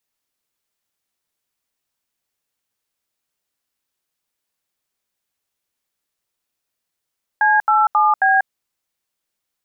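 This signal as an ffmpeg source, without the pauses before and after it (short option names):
-f lavfi -i "aevalsrc='0.2*clip(min(mod(t,0.269),0.191-mod(t,0.269))/0.002,0,1)*(eq(floor(t/0.269),0)*(sin(2*PI*852*mod(t,0.269))+sin(2*PI*1633*mod(t,0.269)))+eq(floor(t/0.269),1)*(sin(2*PI*852*mod(t,0.269))+sin(2*PI*1336*mod(t,0.269)))+eq(floor(t/0.269),2)*(sin(2*PI*852*mod(t,0.269))+sin(2*PI*1209*mod(t,0.269)))+eq(floor(t/0.269),3)*(sin(2*PI*770*mod(t,0.269))+sin(2*PI*1633*mod(t,0.269))))':d=1.076:s=44100"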